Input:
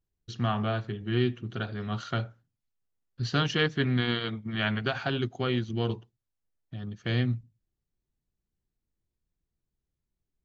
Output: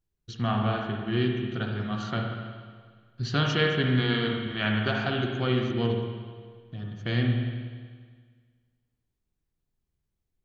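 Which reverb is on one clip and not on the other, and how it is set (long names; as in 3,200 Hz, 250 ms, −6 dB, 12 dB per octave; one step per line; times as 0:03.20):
spring reverb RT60 1.7 s, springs 47/60 ms, chirp 30 ms, DRR 1.5 dB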